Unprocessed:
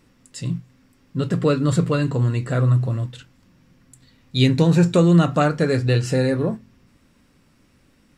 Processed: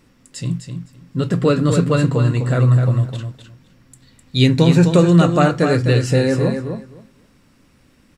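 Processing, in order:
repeating echo 256 ms, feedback 16%, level −7 dB
level +3 dB

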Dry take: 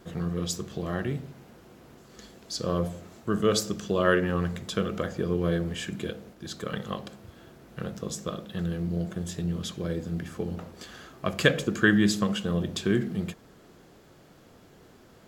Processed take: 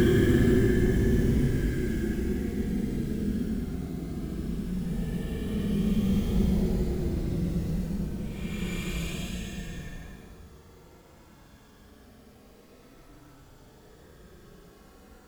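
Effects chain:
sub-octave generator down 2 octaves, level −2 dB
log-companded quantiser 6 bits
extreme stretch with random phases 26×, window 0.05 s, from 0:12.95

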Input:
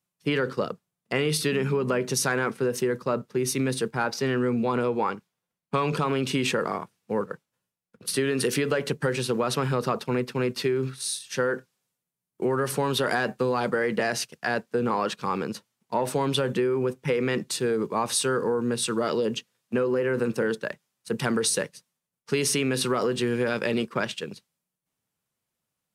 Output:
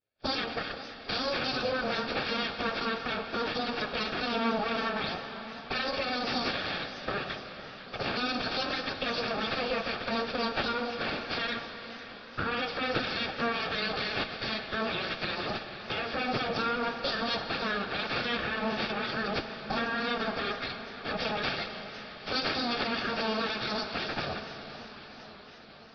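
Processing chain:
phase-vocoder pitch shift without resampling +10.5 semitones
camcorder AGC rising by 77 dB per second
low-pass that shuts in the quiet parts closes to 2,800 Hz, open at −23 dBFS
bass and treble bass +11 dB, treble +14 dB
hum removal 48.64 Hz, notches 32
full-wave rectification
notch comb filter 1,000 Hz
on a send at −8 dB: convolution reverb RT60 4.7 s, pre-delay 47 ms
on the sum: downsampling to 11,025 Hz
feedback echo with a swinging delay time 505 ms, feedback 72%, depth 208 cents, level −17 dB

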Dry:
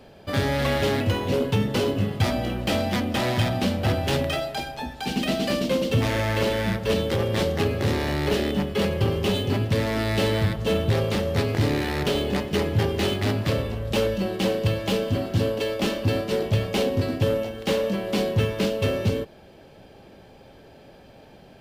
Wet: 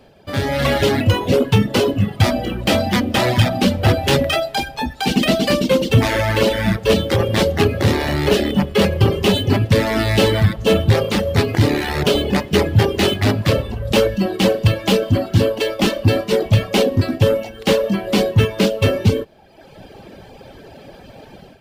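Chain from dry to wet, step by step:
reverb reduction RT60 1 s
automatic gain control gain up to 11.5 dB

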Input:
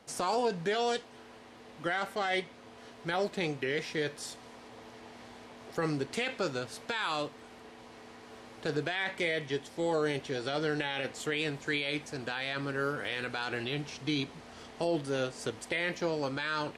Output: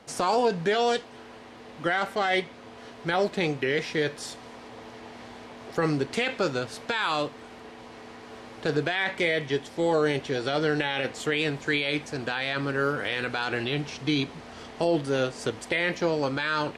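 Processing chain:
high-shelf EQ 7,400 Hz −7 dB
level +6.5 dB

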